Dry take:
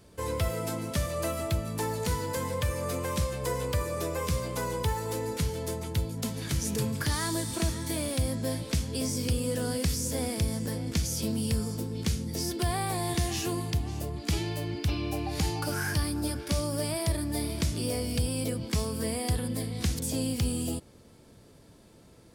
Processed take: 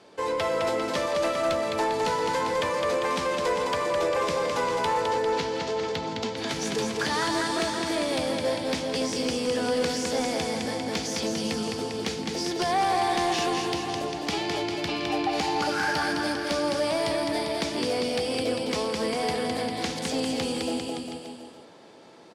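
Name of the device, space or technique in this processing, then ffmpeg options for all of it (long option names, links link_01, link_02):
intercom: -filter_complex "[0:a]asettb=1/sr,asplit=3[link_01][link_02][link_03];[link_01]atrim=end=5.014[link_04];[link_02]atrim=start=5.01:end=6.36,asetpts=PTS-STARTPTS,afade=type=in:duration=0.004:curve=qsin,afade=type=out:start_time=1.346:duration=0.004:curve=qsin,lowpass=frequency=6700:width=0.5412,lowpass=frequency=6700:width=1.3066[link_05];[link_03]atrim=start=6.356[link_06];[link_04][link_05]acrossfade=duration=0.004:curve1=hsin:curve2=qsin[link_07];[link_07][link_06]acrossfade=duration=0.004:curve1=qsin:curve2=hsin,highpass=350,lowpass=4700,equalizer=frequency=810:width_type=o:width=0.22:gain=7,aecho=1:1:210|399|569.1|722.2|860:0.631|0.398|0.251|0.158|0.1,asoftclip=type=tanh:threshold=-25.5dB,volume=7.5dB"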